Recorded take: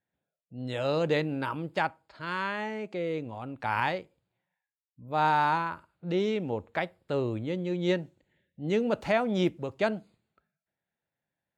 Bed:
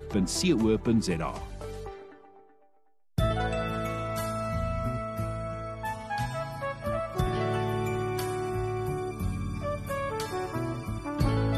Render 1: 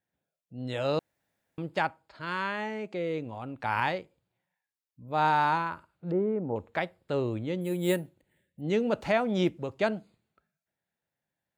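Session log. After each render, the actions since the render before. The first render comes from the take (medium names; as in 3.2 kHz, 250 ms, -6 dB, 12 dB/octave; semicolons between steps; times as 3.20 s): 0.99–1.58 s: room tone; 6.11–6.56 s: low-pass 1.3 kHz 24 dB/octave; 7.61–8.61 s: careless resampling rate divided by 4×, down filtered, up hold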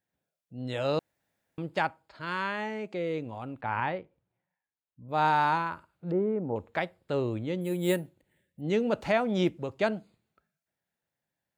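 3.61–5.09 s: distance through air 410 m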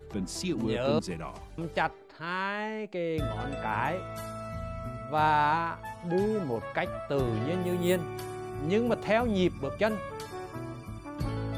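add bed -7 dB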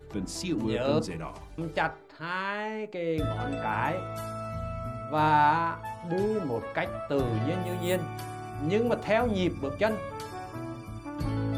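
FDN reverb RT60 0.32 s, low-frequency decay 1.05×, high-frequency decay 0.35×, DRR 8.5 dB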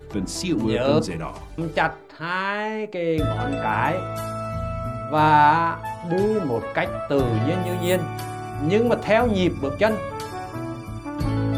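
trim +7 dB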